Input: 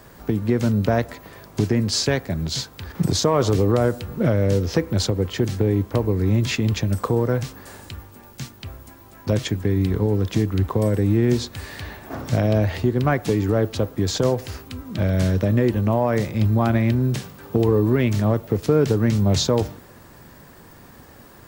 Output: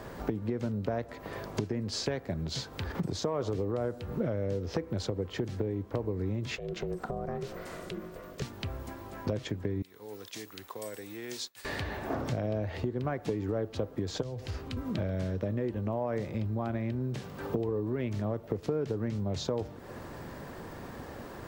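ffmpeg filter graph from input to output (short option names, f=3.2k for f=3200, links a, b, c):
-filter_complex "[0:a]asettb=1/sr,asplit=3[a][b][c];[a]atrim=end=6.574[d];[b]atrim=start=6.57:end=8.42,asetpts=PTS-STARTPTS,afade=t=in:d=0.004:c=qsin,afade=t=out:st=1.846:d=0.004:c=qsin,acompressor=threshold=-36dB:ratio=2.5:attack=3.2:release=140:knee=1:detection=peak,aeval=exprs='val(0)*sin(2*PI*270*n/s)':c=same,asuperstop=centerf=850:order=4:qfactor=6.7[e];[c]atrim=start=8.416[f];[d][e]acrossfade=d=0.004:c1=hsin:c2=qsin[g];[g][f]acrossfade=d=0.004:c1=qsin:c2=hsin,asettb=1/sr,asplit=3[h][i][j];[h]atrim=end=9.824[k];[i]atrim=start=9.82:end=11.65,asetpts=PTS-STARTPTS,afade=t=in:d=0.004:c=qsin,afade=t=out:st=1.826:d=0.004:c=qsin,agate=range=-33dB:threshold=-30dB:ratio=3:release=100:detection=peak,aderivative[l];[j]atrim=start=11.646[m];[k][l]acrossfade=d=0.004:c1=hsin:c2=qsin[n];[n][m]acrossfade=d=0.004:c1=qsin:c2=hsin,asettb=1/sr,asplit=3[o][p][q];[o]atrim=end=14.224[r];[p]atrim=start=14.22:end=14.77,asetpts=PTS-STARTPTS,afade=t=in:d=0.004:c=qsin,afade=t=out:st=0.546:d=0.004:c=qsin,highshelf=f=7.4k:g=-10.5,acrossover=split=130|3000[s][t][u];[t]acompressor=threshold=-46dB:ratio=2:attack=3.2:release=140:knee=2.83:detection=peak[v];[s][v][u]amix=inputs=3:normalize=0[w];[q]atrim=start=14.766[x];[r][w]acrossfade=d=0.004:c1=hsin:c2=qsin[y];[y][x]acrossfade=d=0.004:c1=qsin:c2=hsin,highshelf=f=7k:g=-11.5,acompressor=threshold=-34dB:ratio=6,equalizer=f=510:w=0.85:g=4.5,volume=1.5dB"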